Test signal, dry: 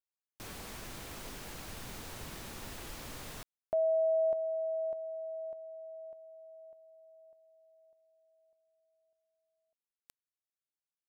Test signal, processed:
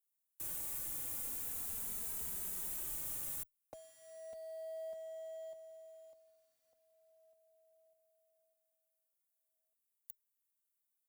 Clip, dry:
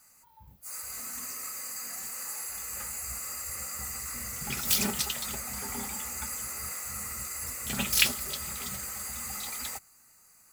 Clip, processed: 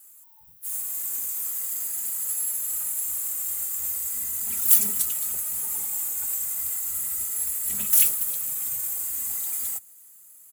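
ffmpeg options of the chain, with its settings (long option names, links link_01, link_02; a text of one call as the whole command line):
ffmpeg -i in.wav -filter_complex "[0:a]aexciter=amount=10:drive=4:freq=7000,acrossover=split=250|2300[link_01][link_02][link_03];[link_02]acompressor=threshold=-34dB:ratio=6:attack=6:release=32:knee=2.83:detection=peak[link_04];[link_01][link_04][link_03]amix=inputs=3:normalize=0,acrusher=bits=4:mode=log:mix=0:aa=0.000001,asplit=2[link_05][link_06];[link_06]adelay=2.7,afreqshift=-0.38[link_07];[link_05][link_07]amix=inputs=2:normalize=1,volume=-7dB" out.wav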